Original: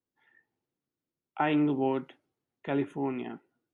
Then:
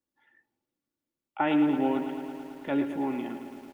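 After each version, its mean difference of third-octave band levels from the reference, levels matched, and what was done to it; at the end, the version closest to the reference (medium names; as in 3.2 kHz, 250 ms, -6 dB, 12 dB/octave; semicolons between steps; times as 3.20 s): 5.5 dB: comb 3.5 ms, depth 44%; bit-crushed delay 110 ms, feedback 80%, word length 9-bit, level -10 dB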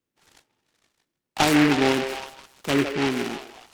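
12.0 dB: repeats whose band climbs or falls 157 ms, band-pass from 550 Hz, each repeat 0.7 oct, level -5 dB; delay time shaken by noise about 1.8 kHz, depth 0.17 ms; trim +7.5 dB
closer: first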